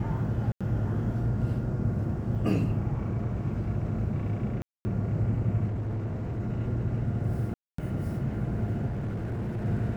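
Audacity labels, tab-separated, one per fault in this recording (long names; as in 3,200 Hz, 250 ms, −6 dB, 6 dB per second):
0.520000	0.610000	drop-out 86 ms
2.350000	2.360000	drop-out 5.8 ms
4.620000	4.850000	drop-out 230 ms
5.670000	6.410000	clipping −28.5 dBFS
7.540000	7.780000	drop-out 244 ms
8.870000	9.660000	clipping −28.5 dBFS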